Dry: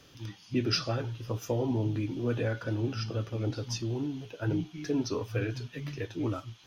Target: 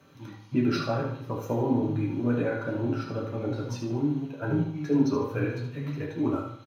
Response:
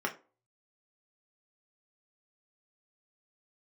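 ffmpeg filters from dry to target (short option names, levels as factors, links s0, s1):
-filter_complex "[0:a]asplit=2[s0][s1];[s1]aeval=exprs='sgn(val(0))*max(abs(val(0))-0.00596,0)':c=same,volume=0.335[s2];[s0][s2]amix=inputs=2:normalize=0,highshelf=f=10000:g=7,aecho=1:1:74|148|222|296|370:0.447|0.174|0.0679|0.0265|0.0103[s3];[1:a]atrim=start_sample=2205,asetrate=31752,aresample=44100[s4];[s3][s4]afir=irnorm=-1:irlink=0,volume=0.422"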